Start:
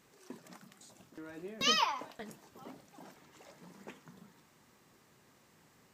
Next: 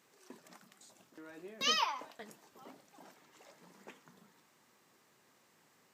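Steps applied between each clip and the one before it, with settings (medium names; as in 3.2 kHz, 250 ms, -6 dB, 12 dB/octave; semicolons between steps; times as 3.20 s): high-pass 330 Hz 6 dB/octave; trim -2 dB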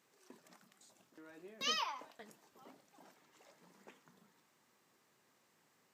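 endings held to a fixed fall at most 230 dB/s; trim -5 dB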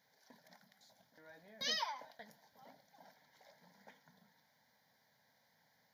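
static phaser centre 1.8 kHz, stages 8; trim +3 dB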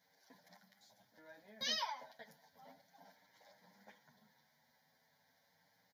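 endless flanger 8.5 ms +0.37 Hz; trim +2.5 dB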